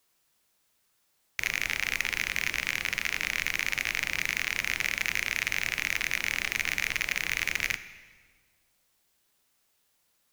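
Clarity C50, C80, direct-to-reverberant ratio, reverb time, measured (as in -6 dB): 14.0 dB, 15.0 dB, 12.0 dB, 1.6 s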